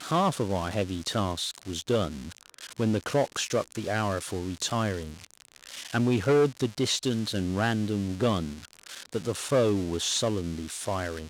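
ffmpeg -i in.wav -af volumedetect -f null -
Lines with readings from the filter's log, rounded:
mean_volume: -28.6 dB
max_volume: -12.8 dB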